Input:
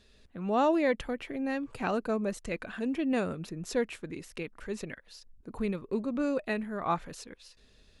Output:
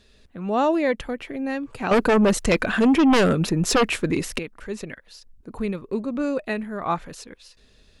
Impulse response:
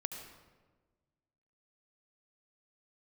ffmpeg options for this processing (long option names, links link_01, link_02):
-filter_complex "[0:a]asettb=1/sr,asplit=3[link_01][link_02][link_03];[link_01]atrim=end=1.914[link_04];[link_02]atrim=start=1.91:end=4.39,asetpts=PTS-STARTPTS,afade=type=in:duration=0.004:curve=qsin,afade=type=out:start_time=2.476:duration=0.004:curve=qsin,aeval=exprs='0.126*sin(PI/2*2.82*val(0)/0.126)':channel_layout=same[link_05];[link_03]atrim=start=4.386[link_06];[link_04][link_05]acrossfade=duration=0.004:curve1=hsin:curve2=qsin[link_07];[link_07][link_06]acrossfade=duration=0.004:curve1=qsin:curve2=hsin,volume=5dB"